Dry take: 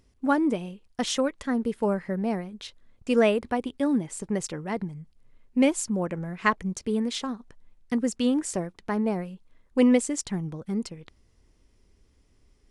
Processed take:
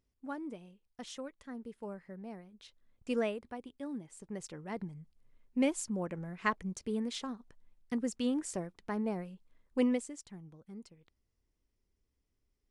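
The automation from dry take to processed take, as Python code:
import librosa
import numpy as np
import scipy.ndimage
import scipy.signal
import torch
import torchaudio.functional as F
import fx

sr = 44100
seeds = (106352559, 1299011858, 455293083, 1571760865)

y = fx.gain(x, sr, db=fx.line((2.42, -18.0), (3.11, -9.5), (3.41, -16.5), (4.12, -16.5), (4.85, -8.5), (9.8, -8.5), (10.23, -19.0)))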